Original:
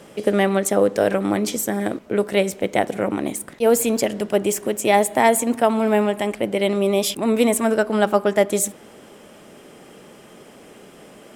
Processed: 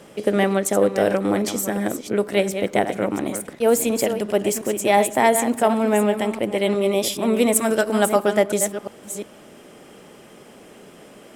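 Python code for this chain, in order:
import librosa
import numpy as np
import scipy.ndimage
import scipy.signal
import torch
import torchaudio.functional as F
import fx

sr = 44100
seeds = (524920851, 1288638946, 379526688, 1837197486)

y = fx.reverse_delay(x, sr, ms=355, wet_db=-9.0)
y = fx.high_shelf(y, sr, hz=fx.line((7.54, 4500.0), (8.35, 6400.0)), db=8.5, at=(7.54, 8.35), fade=0.02)
y = y * librosa.db_to_amplitude(-1.0)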